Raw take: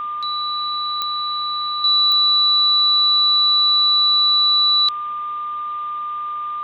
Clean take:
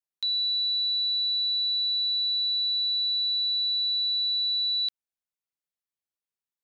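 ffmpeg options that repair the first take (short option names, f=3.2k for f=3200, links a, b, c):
-af "adeclick=t=4,bandreject=f=1.2k:w=30,afwtdn=0.0079,asetnsamples=n=441:p=0,asendcmd='1.84 volume volume -11dB',volume=0dB"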